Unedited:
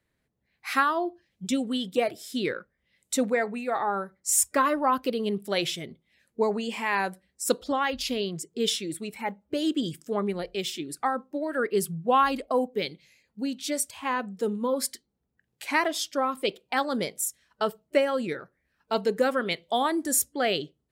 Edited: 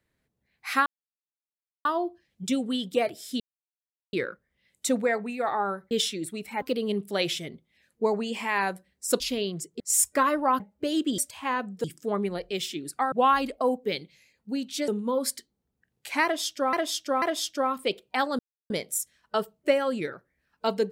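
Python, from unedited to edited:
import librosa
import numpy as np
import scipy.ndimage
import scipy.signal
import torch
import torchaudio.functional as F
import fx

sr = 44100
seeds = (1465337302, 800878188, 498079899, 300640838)

y = fx.edit(x, sr, fx.insert_silence(at_s=0.86, length_s=0.99),
    fx.insert_silence(at_s=2.41, length_s=0.73),
    fx.swap(start_s=4.19, length_s=0.8, other_s=8.59, other_length_s=0.71),
    fx.cut(start_s=7.57, length_s=0.42),
    fx.cut(start_s=11.16, length_s=0.86),
    fx.move(start_s=13.78, length_s=0.66, to_s=9.88),
    fx.repeat(start_s=15.8, length_s=0.49, count=3),
    fx.insert_silence(at_s=16.97, length_s=0.31), tone=tone)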